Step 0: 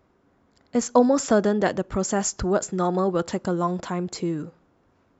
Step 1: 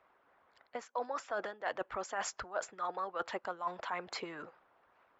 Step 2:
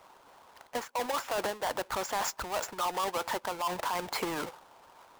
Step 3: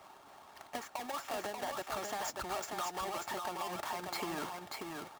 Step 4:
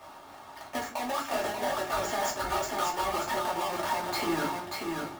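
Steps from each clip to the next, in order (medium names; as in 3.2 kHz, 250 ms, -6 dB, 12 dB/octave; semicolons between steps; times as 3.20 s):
harmonic-percussive split harmonic -11 dB; three-band isolator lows -23 dB, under 600 Hz, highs -23 dB, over 3.4 kHz; reverse; compression 16:1, threshold -39 dBFS, peak gain reduction 21 dB; reverse; trim +5.5 dB
square wave that keeps the level; peaking EQ 910 Hz +7.5 dB 0.4 oct; peak limiter -31 dBFS, peak gain reduction 11.5 dB; trim +6.5 dB
compression, threshold -38 dBFS, peak gain reduction 10 dB; comb of notches 500 Hz; delay 587 ms -4 dB; trim +2 dB
simulated room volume 170 m³, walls furnished, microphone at 2.6 m; trim +2.5 dB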